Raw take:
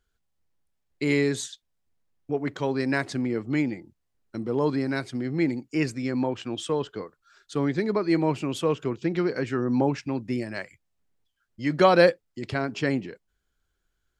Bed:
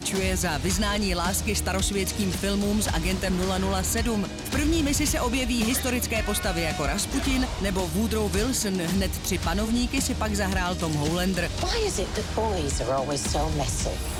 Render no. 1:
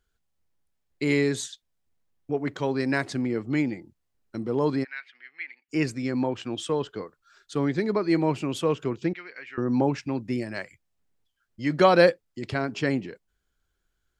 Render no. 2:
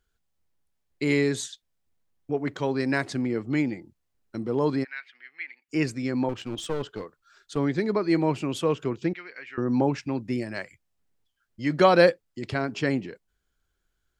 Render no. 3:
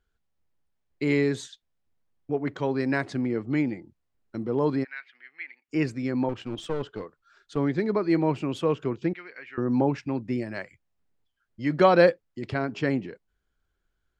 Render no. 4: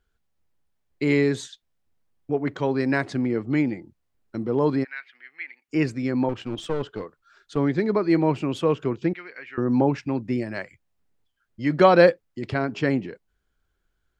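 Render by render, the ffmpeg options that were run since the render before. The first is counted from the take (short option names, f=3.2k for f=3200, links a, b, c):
-filter_complex "[0:a]asplit=3[a][b][c];[a]afade=t=out:st=4.83:d=0.02[d];[b]asuperpass=centerf=2200:order=4:qfactor=1.6,afade=t=in:st=4.83:d=0.02,afade=t=out:st=5.68:d=0.02[e];[c]afade=t=in:st=5.68:d=0.02[f];[d][e][f]amix=inputs=3:normalize=0,asettb=1/sr,asplit=3[g][h][i];[g]atrim=end=9.134[j];[h]atrim=start=9.13:end=9.58,asetpts=PTS-STARTPTS,afade=t=in:d=0.004:c=qsin,afade=t=out:st=0.446:d=0.004:c=qsin,bandpass=f=2.2k:t=q:w=2.5[k];[i]atrim=start=9.576[l];[j][k]acrossfade=d=0.004:c1=hsin:c2=qsin[m];[m][l]acrossfade=d=0.004:c1=qsin:c2=hsin"
-filter_complex "[0:a]asettb=1/sr,asplit=3[a][b][c];[a]atrim=end=6.294[d];[b]atrim=start=6.29:end=7.57,asetpts=PTS-STARTPTS,afade=t=in:d=0.004:c=qsin,afade=t=out:st=1.276:d=0.004:c=qsin,aeval=exprs='clip(val(0),-1,0.0224)':c=same[e];[c]atrim=start=7.566[f];[d][e]acrossfade=d=0.004:c1=hsin:c2=qsin[g];[g][f]acrossfade=d=0.004:c1=qsin:c2=hsin"
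-af "lowpass=f=2.7k:p=1"
-af "volume=3dB"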